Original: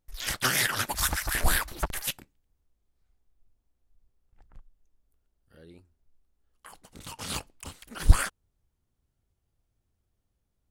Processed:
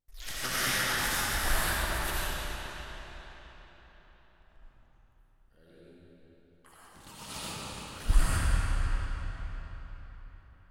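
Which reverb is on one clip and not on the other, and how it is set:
comb and all-pass reverb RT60 4.5 s, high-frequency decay 0.8×, pre-delay 40 ms, DRR −10 dB
level −11 dB

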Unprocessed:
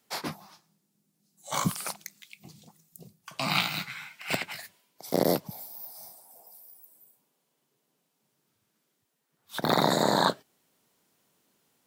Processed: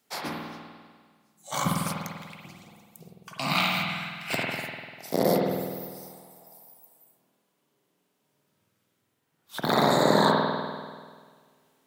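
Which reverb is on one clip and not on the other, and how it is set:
spring reverb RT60 1.7 s, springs 49 ms, chirp 55 ms, DRR −2.5 dB
level −1 dB

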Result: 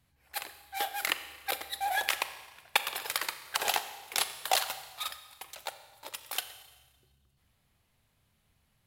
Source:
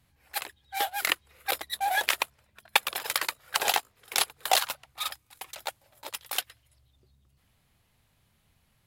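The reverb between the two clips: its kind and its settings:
four-comb reverb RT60 1.3 s, combs from 29 ms, DRR 10.5 dB
level −4 dB

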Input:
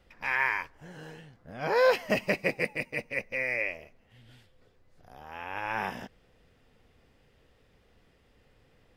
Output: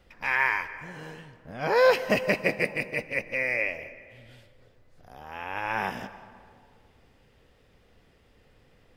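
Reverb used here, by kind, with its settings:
comb and all-pass reverb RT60 2.1 s, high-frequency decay 0.45×, pre-delay 105 ms, DRR 14 dB
level +3 dB

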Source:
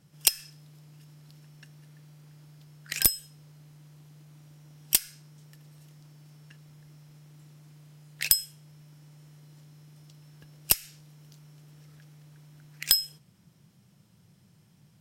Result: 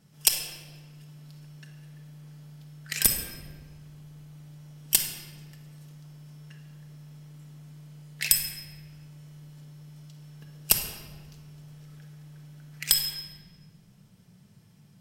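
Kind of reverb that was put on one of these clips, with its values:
rectangular room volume 1,900 cubic metres, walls mixed, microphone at 1.5 metres

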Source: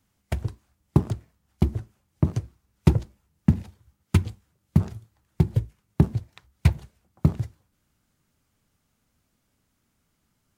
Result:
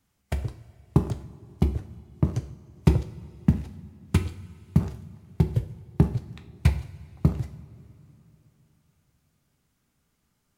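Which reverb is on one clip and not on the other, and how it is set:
coupled-rooms reverb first 0.49 s, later 3.6 s, from −18 dB, DRR 7 dB
level −1.5 dB

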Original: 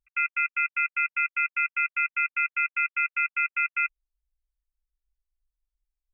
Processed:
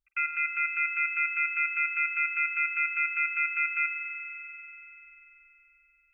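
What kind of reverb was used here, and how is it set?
spring reverb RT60 3.8 s, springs 43 ms, chirp 55 ms, DRR 5.5 dB
level −3 dB

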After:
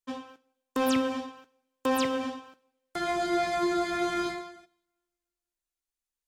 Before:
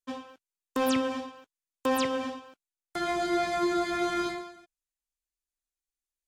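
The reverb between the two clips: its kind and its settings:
coupled-rooms reverb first 0.74 s, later 2.2 s, from −27 dB, DRR 17.5 dB

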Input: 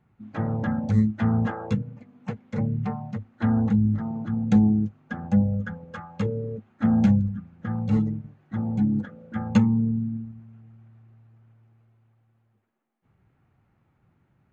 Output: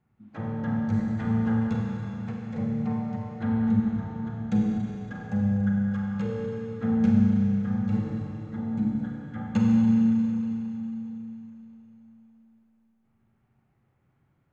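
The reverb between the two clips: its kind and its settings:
four-comb reverb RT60 3.6 s, combs from 31 ms, DRR −2.5 dB
level −7.5 dB

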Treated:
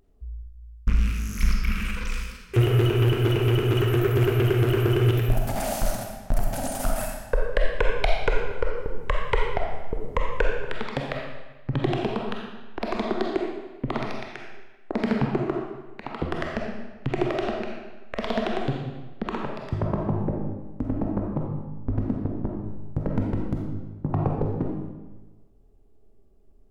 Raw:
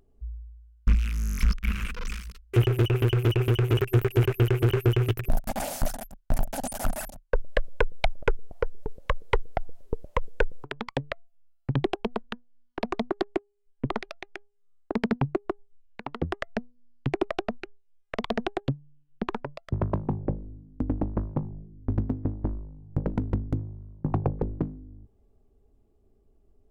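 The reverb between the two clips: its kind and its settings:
comb and all-pass reverb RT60 1.2 s, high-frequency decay 0.9×, pre-delay 5 ms, DRR −1 dB

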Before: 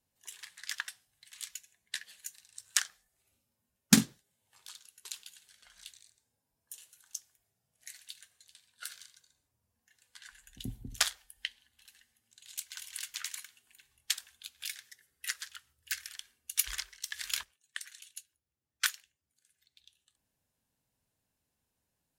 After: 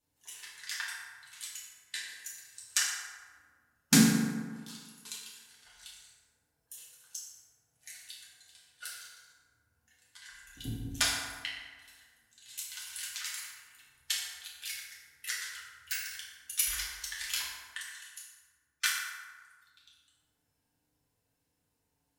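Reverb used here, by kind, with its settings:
feedback delay network reverb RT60 1.6 s, low-frequency decay 0.95×, high-frequency decay 0.5×, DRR −6.5 dB
level −4 dB

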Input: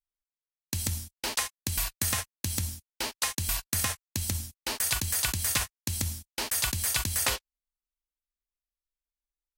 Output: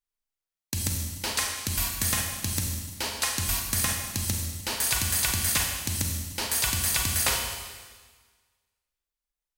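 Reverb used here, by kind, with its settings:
four-comb reverb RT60 1.5 s, combs from 33 ms, DRR 2 dB
level +1 dB

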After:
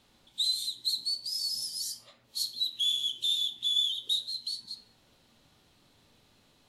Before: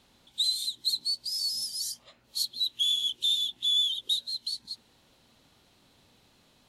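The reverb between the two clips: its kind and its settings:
rectangular room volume 64 cubic metres, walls mixed, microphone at 0.36 metres
level −2.5 dB

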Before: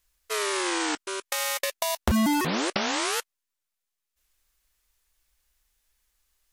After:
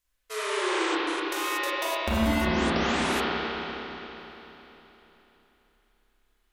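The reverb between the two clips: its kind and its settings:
spring reverb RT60 3.6 s, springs 30/49 ms, chirp 20 ms, DRR −9.5 dB
level −8 dB

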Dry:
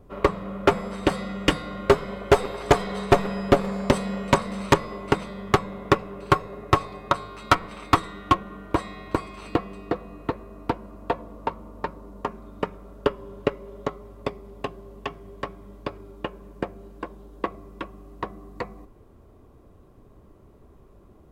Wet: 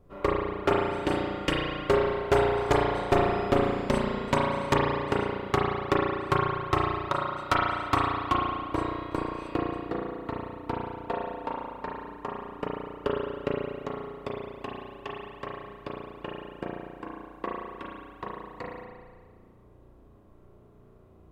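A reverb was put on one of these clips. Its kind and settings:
spring reverb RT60 1.6 s, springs 34 ms, chirp 25 ms, DRR −3.5 dB
level −8 dB

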